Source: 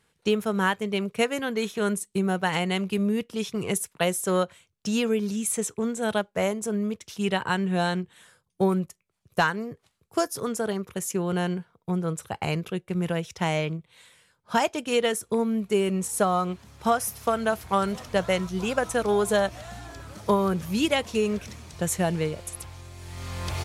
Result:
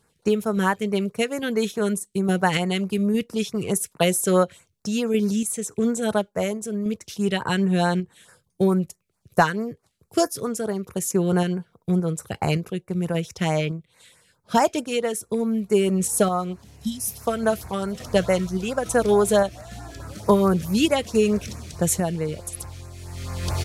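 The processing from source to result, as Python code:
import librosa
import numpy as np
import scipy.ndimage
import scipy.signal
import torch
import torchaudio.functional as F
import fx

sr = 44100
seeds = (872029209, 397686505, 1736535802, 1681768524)

y = fx.filter_lfo_notch(x, sr, shape='sine', hz=4.6, low_hz=860.0, high_hz=3400.0, q=0.78)
y = fx.tremolo_random(y, sr, seeds[0], hz=3.5, depth_pct=55)
y = fx.spec_repair(y, sr, seeds[1], start_s=16.7, length_s=0.41, low_hz=270.0, high_hz=3000.0, source='both')
y = y * librosa.db_to_amplitude(7.0)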